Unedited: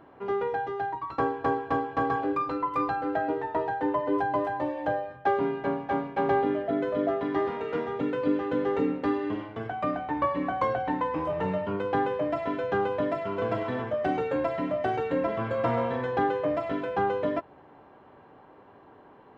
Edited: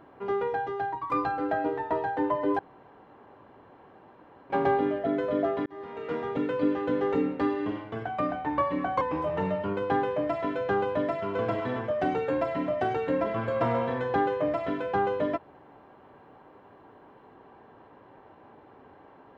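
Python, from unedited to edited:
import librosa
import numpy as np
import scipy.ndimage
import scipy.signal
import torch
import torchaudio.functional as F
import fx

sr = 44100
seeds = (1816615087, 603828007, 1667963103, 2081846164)

y = fx.edit(x, sr, fx.cut(start_s=1.1, length_s=1.64),
    fx.room_tone_fill(start_s=4.23, length_s=1.91),
    fx.fade_in_span(start_s=7.3, length_s=0.59),
    fx.cut(start_s=10.65, length_s=0.39), tone=tone)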